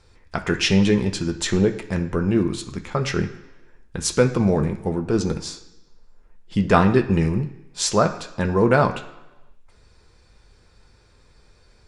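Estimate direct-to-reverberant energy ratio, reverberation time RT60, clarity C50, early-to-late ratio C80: 3.5 dB, 1.0 s, 11.5 dB, 14.5 dB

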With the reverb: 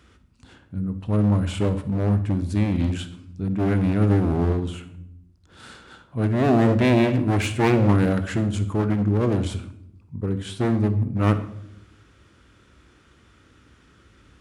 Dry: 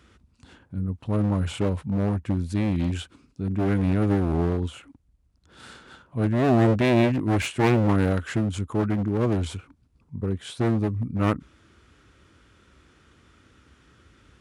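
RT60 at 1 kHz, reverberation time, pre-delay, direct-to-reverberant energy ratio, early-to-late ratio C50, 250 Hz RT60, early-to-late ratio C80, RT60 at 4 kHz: 0.65 s, 0.75 s, 20 ms, 10.0 dB, 12.0 dB, 1.3 s, 16.0 dB, 0.50 s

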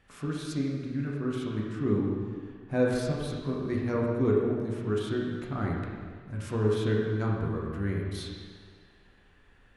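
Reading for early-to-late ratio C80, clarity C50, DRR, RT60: 2.0 dB, 0.5 dB, -3.0 dB, 1.8 s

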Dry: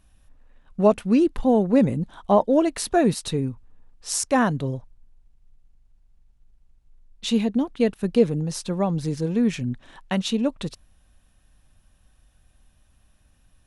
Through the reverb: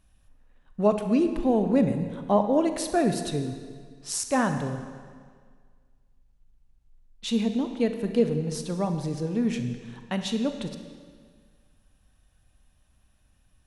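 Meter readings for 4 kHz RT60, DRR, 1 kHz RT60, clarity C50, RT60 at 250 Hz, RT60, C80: 1.6 s, 7.0 dB, 1.8 s, 8.0 dB, 1.8 s, 1.8 s, 9.0 dB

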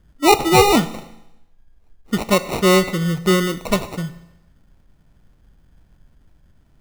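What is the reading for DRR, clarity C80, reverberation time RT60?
11.5 dB, 16.5 dB, 0.90 s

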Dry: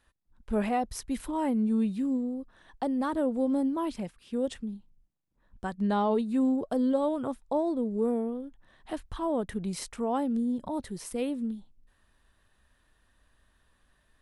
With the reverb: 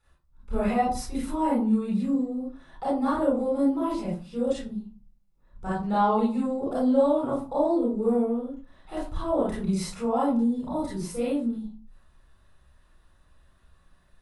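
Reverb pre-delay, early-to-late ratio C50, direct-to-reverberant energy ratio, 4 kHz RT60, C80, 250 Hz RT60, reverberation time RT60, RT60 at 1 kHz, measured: 28 ms, 0.0 dB, -7.5 dB, 0.25 s, 8.5 dB, 0.60 s, 0.40 s, 0.45 s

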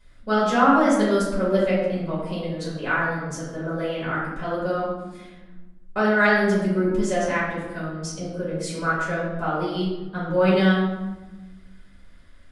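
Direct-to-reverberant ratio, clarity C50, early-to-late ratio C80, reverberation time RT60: -9.0 dB, 0.5 dB, 4.0 dB, 1.1 s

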